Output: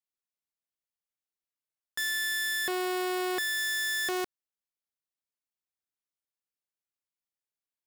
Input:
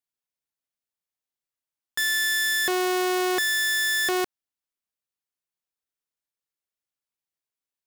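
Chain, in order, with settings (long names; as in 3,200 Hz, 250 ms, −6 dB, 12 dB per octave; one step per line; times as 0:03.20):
0:02.10–0:03.58: notch filter 6,200 Hz, Q 5.3
level −6.5 dB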